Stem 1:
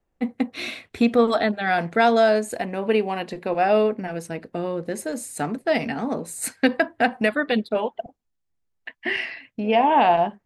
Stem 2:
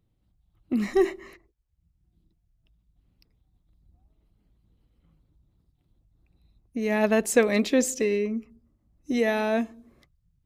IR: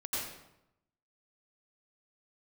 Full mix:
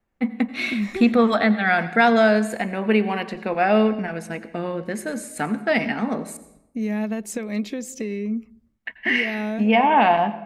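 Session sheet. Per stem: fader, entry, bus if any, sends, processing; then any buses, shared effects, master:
−3.0 dB, 0.00 s, muted 0:06.37–0:08.14, send −16.5 dB, parametric band 1,700 Hz +7 dB 1.7 octaves
−1.5 dB, 0.00 s, no send, downward compressor 8 to 1, threshold −26 dBFS, peak gain reduction 12.5 dB; downward expander −59 dBFS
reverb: on, RT60 0.85 s, pre-delay 81 ms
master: tape wow and flutter 25 cents; hollow resonant body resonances 210/2,200 Hz, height 10 dB, ringing for 90 ms

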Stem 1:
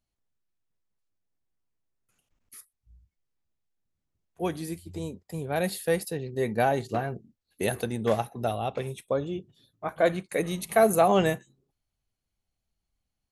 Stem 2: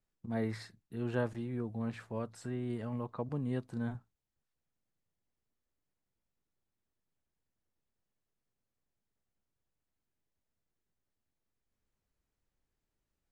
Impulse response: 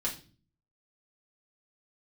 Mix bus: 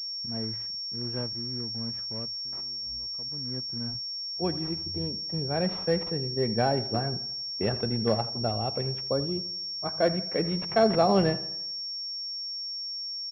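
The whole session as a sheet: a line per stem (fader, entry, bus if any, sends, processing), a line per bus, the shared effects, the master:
−4.0 dB, 0.00 s, no send, echo send −16.5 dB, no processing
−6.0 dB, 0.00 s, no send, no echo send, short delay modulated by noise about 1,400 Hz, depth 0.053 ms; automatic ducking −19 dB, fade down 0.25 s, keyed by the first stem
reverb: not used
echo: repeating echo 84 ms, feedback 51%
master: low-shelf EQ 380 Hz +7.5 dB; switching amplifier with a slow clock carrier 5,500 Hz

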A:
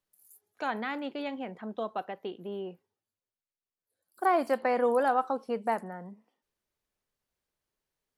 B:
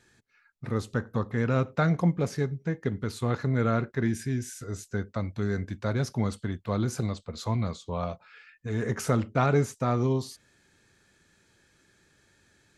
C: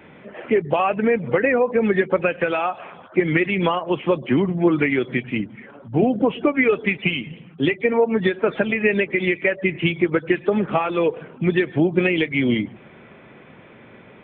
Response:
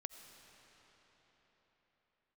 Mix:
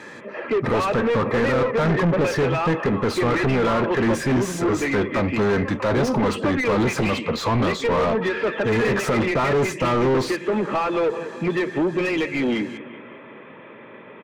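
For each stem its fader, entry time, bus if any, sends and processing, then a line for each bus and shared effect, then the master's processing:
−7.5 dB, 1.15 s, no send, no echo send, pair of resonant band-passes 1,700 Hz, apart 1.1 octaves; downward compressor, threshold −45 dBFS, peak gain reduction 15.5 dB
+2.5 dB, 0.00 s, no send, no echo send, brickwall limiter −19 dBFS, peak gain reduction 8.5 dB
−16.0 dB, 0.00 s, no send, echo send −18 dB, no processing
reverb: not used
echo: repeating echo 191 ms, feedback 52%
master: high-pass filter 40 Hz; notch comb filter 740 Hz; mid-hump overdrive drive 33 dB, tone 1,200 Hz, clips at −11 dBFS

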